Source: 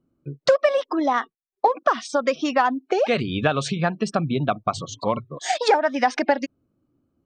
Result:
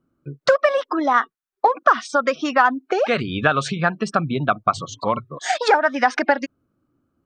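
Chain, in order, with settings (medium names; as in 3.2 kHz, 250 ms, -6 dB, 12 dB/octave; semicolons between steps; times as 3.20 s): peaking EQ 1.4 kHz +9.5 dB 0.8 oct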